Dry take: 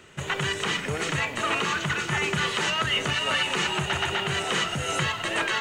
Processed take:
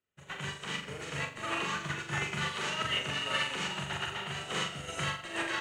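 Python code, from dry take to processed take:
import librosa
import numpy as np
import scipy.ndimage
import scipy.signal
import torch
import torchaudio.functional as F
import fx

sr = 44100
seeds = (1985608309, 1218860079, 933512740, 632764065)

y = fx.room_flutter(x, sr, wall_m=7.2, rt60_s=0.73)
y = fx.upward_expand(y, sr, threshold_db=-43.0, expansion=2.5)
y = F.gain(torch.from_numpy(y), -7.0).numpy()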